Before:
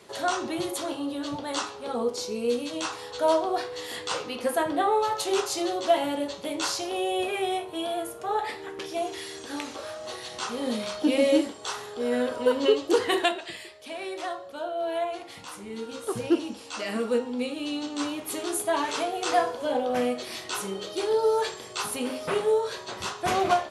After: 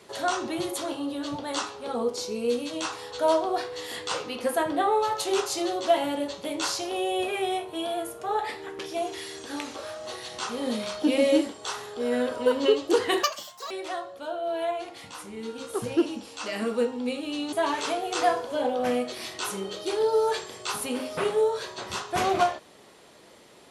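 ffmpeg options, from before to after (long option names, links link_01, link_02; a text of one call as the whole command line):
ffmpeg -i in.wav -filter_complex "[0:a]asplit=4[link_01][link_02][link_03][link_04];[link_01]atrim=end=13.234[link_05];[link_02]atrim=start=13.23:end=14.04,asetpts=PTS-STARTPTS,asetrate=74970,aresample=44100,atrim=end_sample=21012,asetpts=PTS-STARTPTS[link_06];[link_03]atrim=start=14.036:end=17.862[link_07];[link_04]atrim=start=18.628[link_08];[link_05][link_06]acrossfade=duration=0.004:curve1=hsin:curve2=hsin[link_09];[link_09][link_07]acrossfade=duration=0.004:curve1=hsin:curve2=hsin[link_10];[link_10][link_08]acrossfade=duration=0.004:curve1=hsin:curve2=hsin" out.wav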